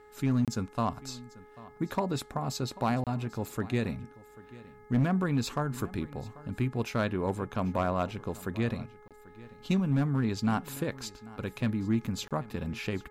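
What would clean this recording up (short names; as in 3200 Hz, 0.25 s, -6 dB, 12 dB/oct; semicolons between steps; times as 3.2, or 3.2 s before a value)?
clip repair -20 dBFS; de-hum 421.2 Hz, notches 5; interpolate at 0.45/3.04/9.08/12.28, 27 ms; inverse comb 0.79 s -20 dB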